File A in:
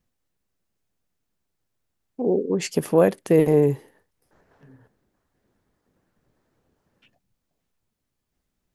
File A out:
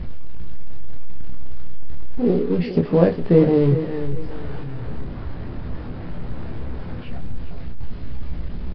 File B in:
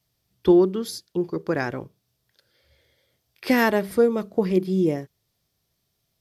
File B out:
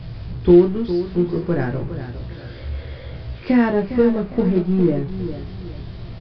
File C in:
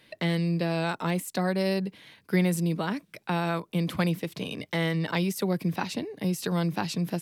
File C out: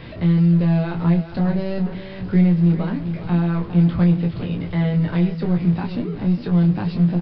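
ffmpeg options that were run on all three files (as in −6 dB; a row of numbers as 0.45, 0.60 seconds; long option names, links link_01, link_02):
-filter_complex "[0:a]aeval=exprs='val(0)+0.5*0.0266*sgn(val(0))':channel_layout=same,acrusher=bits=4:mode=log:mix=0:aa=0.000001,aemphasis=mode=reproduction:type=riaa,asplit=2[link_01][link_02];[link_02]aecho=0:1:408|816|1224:0.282|0.0874|0.0271[link_03];[link_01][link_03]amix=inputs=2:normalize=0,aresample=11025,aresample=44100,asplit=2[link_04][link_05];[link_05]aecho=0:1:17|29:0.501|0.501[link_06];[link_04][link_06]amix=inputs=2:normalize=0,volume=-4.5dB"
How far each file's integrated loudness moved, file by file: −2.0, +3.5, +9.0 LU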